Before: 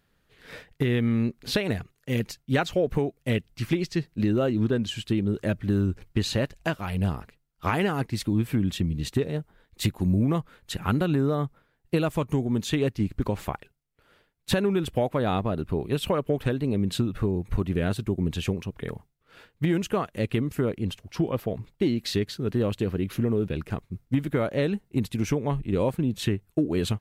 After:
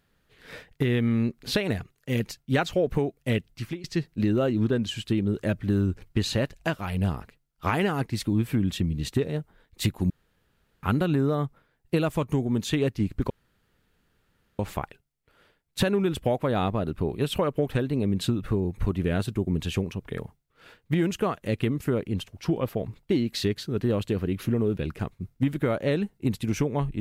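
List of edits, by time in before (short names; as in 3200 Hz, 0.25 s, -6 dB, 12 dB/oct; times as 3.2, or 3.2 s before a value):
3.48–3.84 fade out, to -20.5 dB
10.1–10.83 room tone
13.3 insert room tone 1.29 s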